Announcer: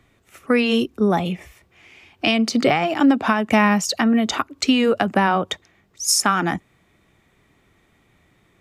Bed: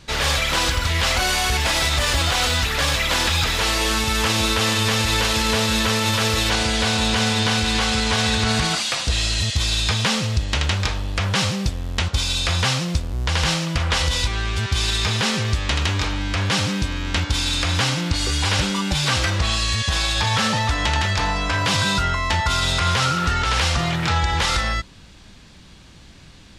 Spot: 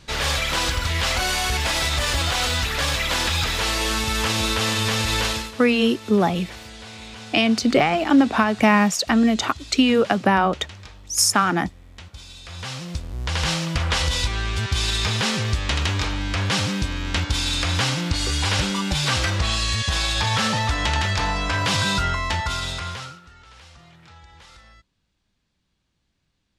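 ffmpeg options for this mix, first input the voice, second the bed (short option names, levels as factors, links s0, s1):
-filter_complex "[0:a]adelay=5100,volume=1[s0];[1:a]volume=5.96,afade=t=out:st=5.27:d=0.24:silence=0.141254,afade=t=in:st=12.44:d=1.2:silence=0.125893,afade=t=out:st=22.09:d=1.12:silence=0.0501187[s1];[s0][s1]amix=inputs=2:normalize=0"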